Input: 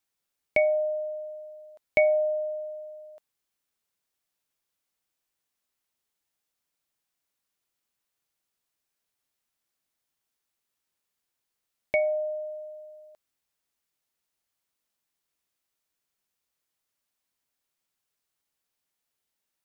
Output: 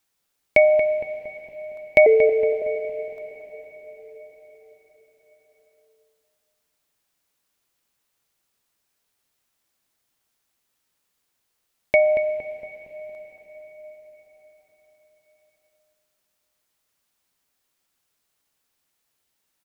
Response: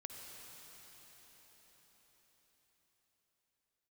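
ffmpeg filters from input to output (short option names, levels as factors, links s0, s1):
-filter_complex "[0:a]asettb=1/sr,asplit=3[s0][s1][s2];[s0]atrim=end=2.064[s3];[s1]atrim=start=2.06:end=2.62,asetpts=PTS-STARTPTS,afade=t=in:d=0.004:c=qsin,afade=t=out:st=0.556:d=0.004:c=qsin,afreqshift=-170[s4];[s2]atrim=start=2.616[s5];[s3][s4]acrossfade=d=0.004:c1=hsin:c2=qsin[s6];[s6][s5]acrossfade=d=0.004:c1=qsin:c2=hsin,asplit=2[s7][s8];[s8]adelay=231,lowpass=f=1600:p=1,volume=0.398,asplit=2[s9][s10];[s10]adelay=231,lowpass=f=1600:p=1,volume=0.54,asplit=2[s11][s12];[s12]adelay=231,lowpass=f=1600:p=1,volume=0.54,asplit=2[s13][s14];[s14]adelay=231,lowpass=f=1600:p=1,volume=0.54,asplit=2[s15][s16];[s16]adelay=231,lowpass=f=1600:p=1,volume=0.54,asplit=2[s17][s18];[s18]adelay=231,lowpass=f=1600:p=1,volume=0.54[s19];[s7][s9][s11][s13][s15][s17][s19]amix=inputs=7:normalize=0,asplit=2[s20][s21];[1:a]atrim=start_sample=2205[s22];[s21][s22]afir=irnorm=-1:irlink=0,volume=0.75[s23];[s20][s23]amix=inputs=2:normalize=0,volume=1.78"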